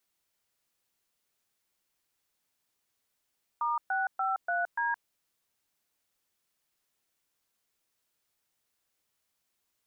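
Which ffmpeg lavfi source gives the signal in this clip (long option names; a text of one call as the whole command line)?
ffmpeg -f lavfi -i "aevalsrc='0.0335*clip(min(mod(t,0.291),0.169-mod(t,0.291))/0.002,0,1)*(eq(floor(t/0.291),0)*(sin(2*PI*941*mod(t,0.291))+sin(2*PI*1209*mod(t,0.291)))+eq(floor(t/0.291),1)*(sin(2*PI*770*mod(t,0.291))+sin(2*PI*1477*mod(t,0.291)))+eq(floor(t/0.291),2)*(sin(2*PI*770*mod(t,0.291))+sin(2*PI*1336*mod(t,0.291)))+eq(floor(t/0.291),3)*(sin(2*PI*697*mod(t,0.291))+sin(2*PI*1477*mod(t,0.291)))+eq(floor(t/0.291),4)*(sin(2*PI*941*mod(t,0.291))+sin(2*PI*1633*mod(t,0.291))))':duration=1.455:sample_rate=44100" out.wav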